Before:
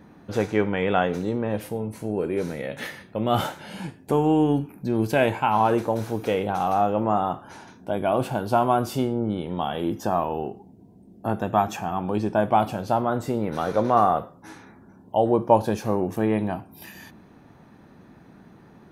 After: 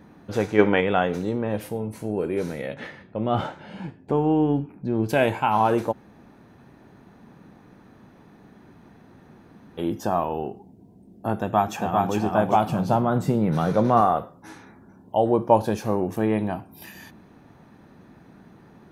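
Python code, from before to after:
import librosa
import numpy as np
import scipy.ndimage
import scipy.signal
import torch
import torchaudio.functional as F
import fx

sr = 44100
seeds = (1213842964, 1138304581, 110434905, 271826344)

y = fx.spec_box(x, sr, start_s=0.59, length_s=0.22, low_hz=200.0, high_hz=6700.0, gain_db=7)
y = fx.spacing_loss(y, sr, db_at_10k=22, at=(2.74, 5.09))
y = fx.echo_throw(y, sr, start_s=11.39, length_s=0.76, ms=400, feedback_pct=35, wet_db=-2.0)
y = fx.peak_eq(y, sr, hz=160.0, db=13.0, octaves=0.77, at=(12.69, 14.01))
y = fx.edit(y, sr, fx.room_tone_fill(start_s=5.92, length_s=3.86, crossfade_s=0.02), tone=tone)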